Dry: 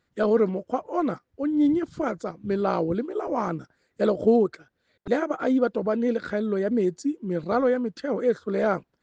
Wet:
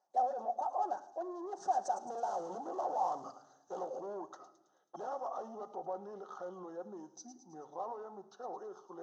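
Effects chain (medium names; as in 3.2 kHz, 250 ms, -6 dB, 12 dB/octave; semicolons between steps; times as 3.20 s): Doppler pass-by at 2.47 s, 55 m/s, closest 10 m; peaking EQ 1.6 kHz +4 dB 2 oct; in parallel at +2 dB: compression, threshold -38 dBFS, peak gain reduction 16 dB; on the sum: overdrive pedal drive 34 dB, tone 1.2 kHz, clips at -10.5 dBFS; peak limiter -22.5 dBFS, peak gain reduction 11 dB; two resonant band-passes 2.2 kHz, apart 3 oct; on a send: feedback echo behind a high-pass 108 ms, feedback 56%, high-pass 4.6 kHz, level -7 dB; on the sum: simulated room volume 2800 m³, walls furnished, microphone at 0.96 m; trim +1.5 dB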